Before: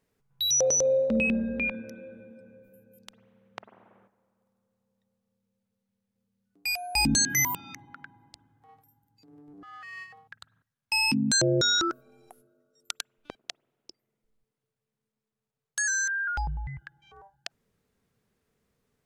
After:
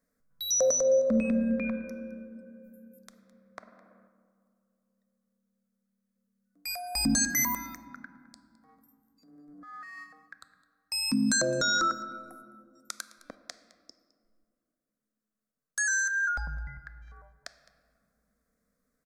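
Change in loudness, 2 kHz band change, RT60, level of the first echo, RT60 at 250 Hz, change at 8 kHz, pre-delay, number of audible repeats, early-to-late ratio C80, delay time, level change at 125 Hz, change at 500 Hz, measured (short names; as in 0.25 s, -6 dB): -2.0 dB, -1.5 dB, 2.2 s, -20.0 dB, 3.1 s, -2.5 dB, 4 ms, 1, 13.0 dB, 0.211 s, -6.5 dB, 0.0 dB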